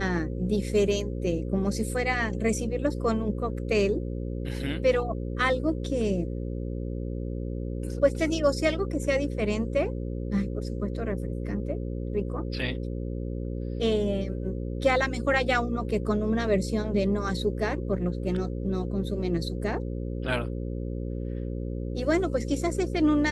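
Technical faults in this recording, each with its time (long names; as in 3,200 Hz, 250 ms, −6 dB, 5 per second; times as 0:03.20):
mains buzz 60 Hz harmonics 9 −32 dBFS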